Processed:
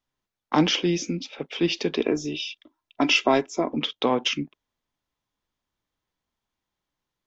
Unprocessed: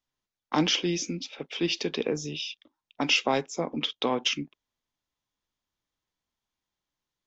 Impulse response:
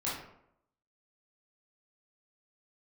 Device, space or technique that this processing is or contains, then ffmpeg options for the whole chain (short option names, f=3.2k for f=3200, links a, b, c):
behind a face mask: -filter_complex "[0:a]asettb=1/sr,asplit=3[a][b][c];[a]atrim=end=1.974[d];[b]atrim=start=1.97:end=3.71,asetpts=PTS-STARTPTS,afade=t=in:d=0.004:c=qsin,afade=t=out:st=1.736:d=0.004:c=qsin,aecho=1:1:3:0.54,atrim=end_sample=76734[e];[c]atrim=start=3.706[f];[d][e]acrossfade=d=0.004:c1=hsin:c2=qsin[g];[g][f]acrossfade=d=0.004:c1=qsin:c2=hsin,highshelf=f=3.1k:g=-7,volume=5dB"